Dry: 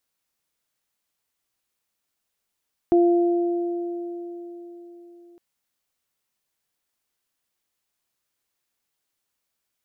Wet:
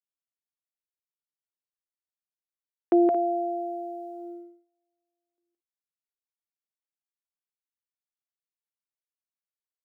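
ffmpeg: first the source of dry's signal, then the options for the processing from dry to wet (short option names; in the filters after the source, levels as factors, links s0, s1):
-f lavfi -i "aevalsrc='0.224*pow(10,-3*t/4.24)*sin(2*PI*346*t)+0.0708*pow(10,-3*t/3.47)*sin(2*PI*692*t)':d=2.46:s=44100"
-af "agate=range=0.0282:threshold=0.02:ratio=16:detection=peak,highpass=290,aecho=1:1:169.1|224.5:0.708|0.251"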